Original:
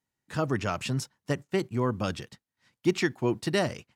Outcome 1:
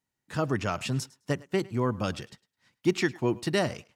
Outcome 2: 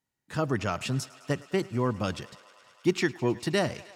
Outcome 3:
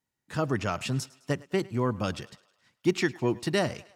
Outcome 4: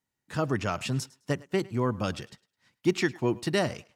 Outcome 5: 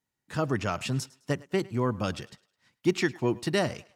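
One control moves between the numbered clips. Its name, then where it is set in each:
thinning echo, feedback: 16%, 89%, 56%, 24%, 37%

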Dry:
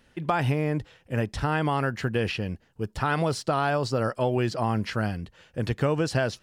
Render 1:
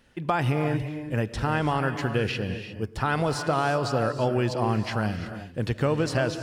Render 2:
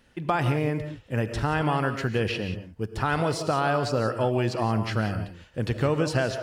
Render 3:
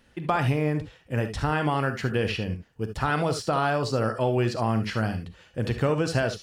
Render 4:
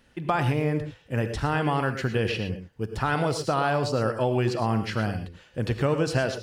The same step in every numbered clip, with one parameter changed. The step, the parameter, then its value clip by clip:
gated-style reverb, gate: 380 ms, 200 ms, 90 ms, 140 ms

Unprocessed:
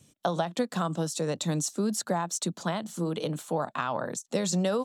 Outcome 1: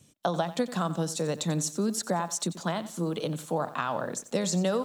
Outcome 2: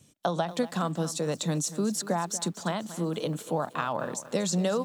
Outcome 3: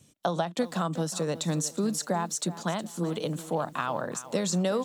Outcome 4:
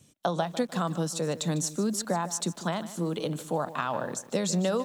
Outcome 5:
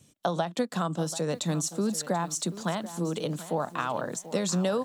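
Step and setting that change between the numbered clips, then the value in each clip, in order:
bit-crushed delay, time: 90 ms, 236 ms, 365 ms, 151 ms, 736 ms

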